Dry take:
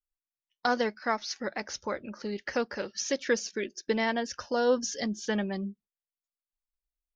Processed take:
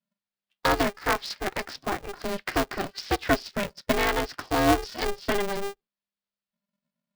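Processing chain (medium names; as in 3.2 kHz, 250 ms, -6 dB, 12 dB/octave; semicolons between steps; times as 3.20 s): resampled via 11.025 kHz; polarity switched at an audio rate 200 Hz; trim +4 dB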